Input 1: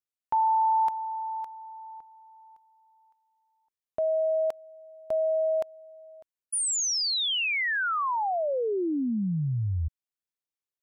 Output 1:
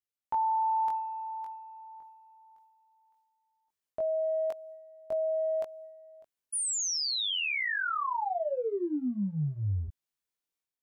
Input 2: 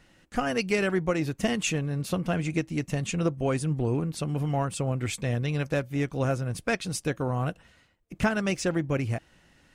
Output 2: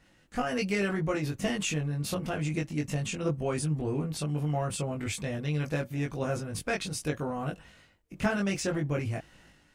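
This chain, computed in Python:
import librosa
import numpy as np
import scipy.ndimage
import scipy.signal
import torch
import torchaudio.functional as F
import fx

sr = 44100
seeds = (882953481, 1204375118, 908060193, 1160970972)

y = fx.transient(x, sr, attack_db=1, sustain_db=7)
y = fx.doubler(y, sr, ms=20.0, db=-2.0)
y = y * 10.0 ** (-6.0 / 20.0)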